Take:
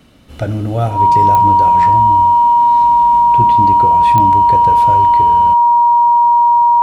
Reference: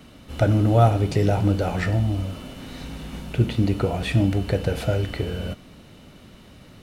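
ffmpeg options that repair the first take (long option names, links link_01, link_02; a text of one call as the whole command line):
ffmpeg -i in.wav -af "adeclick=threshold=4,bandreject=frequency=950:width=30" out.wav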